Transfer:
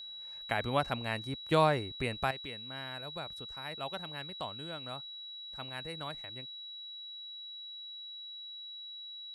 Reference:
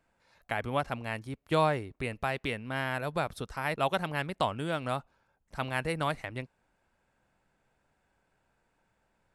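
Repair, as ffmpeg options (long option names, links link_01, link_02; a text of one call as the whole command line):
ffmpeg -i in.wav -af "bandreject=frequency=3900:width=30,asetnsamples=nb_out_samples=441:pad=0,asendcmd='2.31 volume volume 11.5dB',volume=0dB" out.wav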